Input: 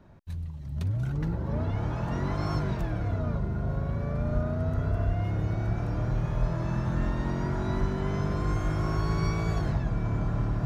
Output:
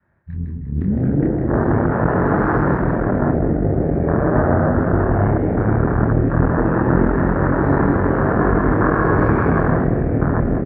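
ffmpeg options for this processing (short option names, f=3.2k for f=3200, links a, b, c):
-filter_complex "[0:a]aeval=exprs='0.178*(cos(1*acos(clip(val(0)/0.178,-1,1)))-cos(1*PI/2))+0.0631*(cos(6*acos(clip(val(0)/0.178,-1,1)))-cos(6*PI/2))':c=same,flanger=delay=22.5:depth=6.1:speed=2,asplit=2[a][b];[b]aecho=0:1:158:0.562[c];[a][c]amix=inputs=2:normalize=0,afwtdn=0.0282,lowpass=f=1.8k:t=q:w=4.8,adynamicequalizer=threshold=0.00794:dfrequency=370:dqfactor=1.1:tfrequency=370:tqfactor=1.1:attack=5:release=100:ratio=0.375:range=3:mode=boostabove:tftype=bell,highpass=51,asplit=2[d][e];[e]aecho=0:1:201:0.251[f];[d][f]amix=inputs=2:normalize=0,volume=9dB"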